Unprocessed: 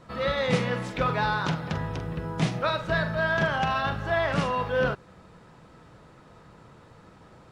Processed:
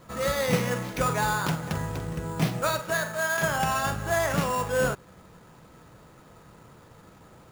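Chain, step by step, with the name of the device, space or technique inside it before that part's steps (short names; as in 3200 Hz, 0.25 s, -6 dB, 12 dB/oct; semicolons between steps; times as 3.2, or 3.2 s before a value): 2.8–3.42 HPF 280 Hz -> 750 Hz 6 dB/oct; early companding sampler (sample-rate reducer 8300 Hz, jitter 0%; companded quantiser 6-bit)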